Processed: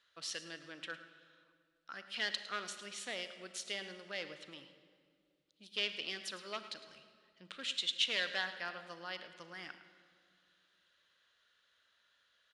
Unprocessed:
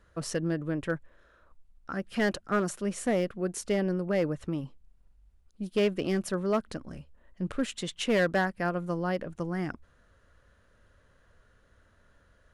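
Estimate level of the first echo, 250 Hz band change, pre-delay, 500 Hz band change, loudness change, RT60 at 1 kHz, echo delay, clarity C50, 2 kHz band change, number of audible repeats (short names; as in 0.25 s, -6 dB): -14.5 dB, -25.0 dB, 32 ms, -19.0 dB, -9.0 dB, 2.1 s, 0.107 s, 9.5 dB, -5.0 dB, 1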